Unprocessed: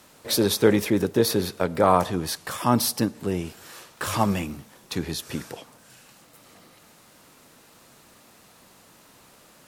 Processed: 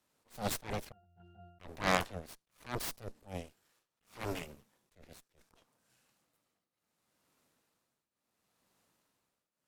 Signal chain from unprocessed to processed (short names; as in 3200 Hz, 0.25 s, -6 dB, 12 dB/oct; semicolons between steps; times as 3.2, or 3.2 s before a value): added harmonics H 3 -8 dB, 5 -43 dB, 8 -15 dB, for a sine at -5 dBFS; 0.92–1.6 octave resonator F, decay 0.76 s; tremolo triangle 0.71 Hz, depth 90%; attack slew limiter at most 200 dB/s; gain -5.5 dB